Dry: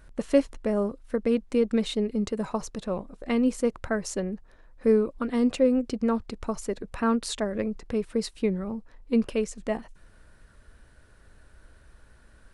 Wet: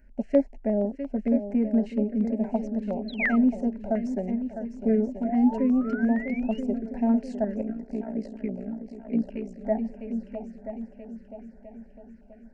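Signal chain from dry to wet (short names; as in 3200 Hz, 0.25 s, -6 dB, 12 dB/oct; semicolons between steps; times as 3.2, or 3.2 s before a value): multi-head echo 0.327 s, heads second and third, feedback 50%, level -10.5 dB; 7.61–9.61 AM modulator 59 Hz, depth 85%; fixed phaser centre 330 Hz, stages 6; 5.24–6.6 painted sound rise 650–3000 Hz -38 dBFS; low shelf 98 Hz -10 dB; 3.08–3.36 painted sound fall 1200–4300 Hz -18 dBFS; tape spacing loss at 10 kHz 40 dB; fixed phaser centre 730 Hz, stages 8; stepped notch 8.6 Hz 730–3600 Hz; gain +9 dB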